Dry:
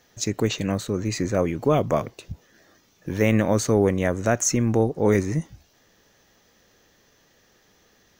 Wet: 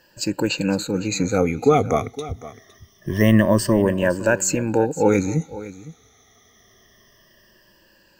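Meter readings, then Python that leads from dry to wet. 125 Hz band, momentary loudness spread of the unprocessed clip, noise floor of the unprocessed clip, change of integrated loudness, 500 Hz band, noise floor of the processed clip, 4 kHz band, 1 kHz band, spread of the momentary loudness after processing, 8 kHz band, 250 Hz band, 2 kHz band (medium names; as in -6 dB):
+1.5 dB, 13 LU, -61 dBFS, +2.5 dB, +2.5 dB, -57 dBFS, +4.0 dB, +4.0 dB, 16 LU, +1.0 dB, +3.5 dB, +5.0 dB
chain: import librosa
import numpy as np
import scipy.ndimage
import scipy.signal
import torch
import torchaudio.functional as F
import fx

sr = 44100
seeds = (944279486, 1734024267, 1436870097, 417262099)

p1 = fx.spec_ripple(x, sr, per_octave=1.3, drift_hz=-0.25, depth_db=19)
y = p1 + fx.echo_single(p1, sr, ms=510, db=-16.5, dry=0)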